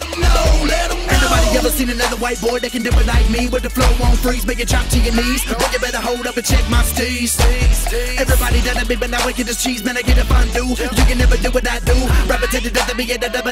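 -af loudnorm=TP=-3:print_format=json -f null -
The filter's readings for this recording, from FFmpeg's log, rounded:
"input_i" : "-16.3",
"input_tp" : "-2.4",
"input_lra" : "0.8",
"input_thresh" : "-26.3",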